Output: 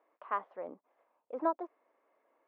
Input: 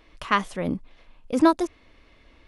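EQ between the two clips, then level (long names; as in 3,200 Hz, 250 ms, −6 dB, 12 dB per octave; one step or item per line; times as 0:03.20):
high-pass filter 530 Hz 12 dB per octave
resonant band-pass 710 Hz, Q 0.78
Bessel low-pass filter 1,000 Hz, order 2
−5.5 dB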